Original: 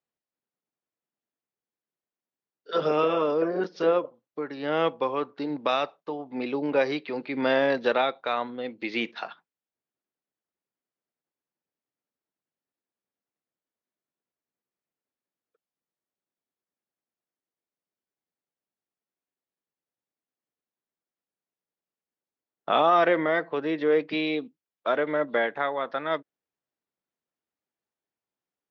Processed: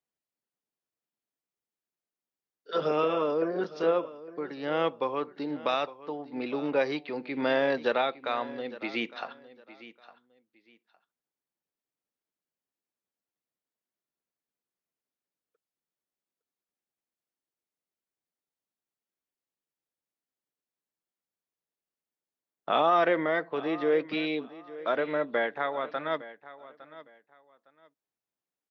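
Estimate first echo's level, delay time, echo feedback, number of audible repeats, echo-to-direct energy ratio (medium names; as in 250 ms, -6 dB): -17.0 dB, 859 ms, 23%, 2, -17.0 dB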